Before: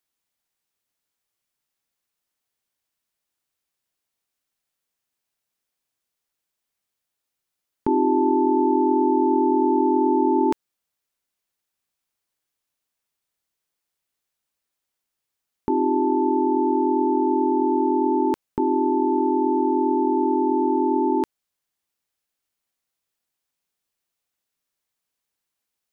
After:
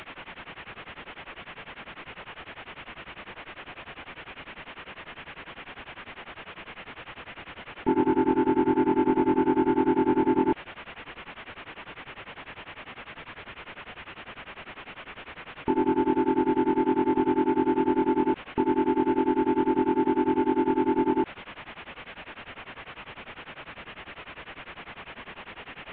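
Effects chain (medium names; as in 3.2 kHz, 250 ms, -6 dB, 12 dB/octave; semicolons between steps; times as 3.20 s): one-bit delta coder 16 kbps, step -32.5 dBFS; tremolo of two beating tones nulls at 10 Hz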